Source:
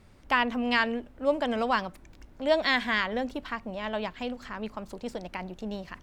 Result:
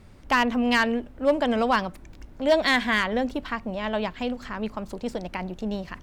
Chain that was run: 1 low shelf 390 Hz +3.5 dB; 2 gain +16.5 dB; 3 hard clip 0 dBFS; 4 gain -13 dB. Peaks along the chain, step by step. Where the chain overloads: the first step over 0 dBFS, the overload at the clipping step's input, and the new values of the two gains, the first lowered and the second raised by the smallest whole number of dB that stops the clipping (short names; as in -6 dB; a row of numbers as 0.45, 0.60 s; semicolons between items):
-9.5, +7.0, 0.0, -13.0 dBFS; step 2, 7.0 dB; step 2 +9.5 dB, step 4 -6 dB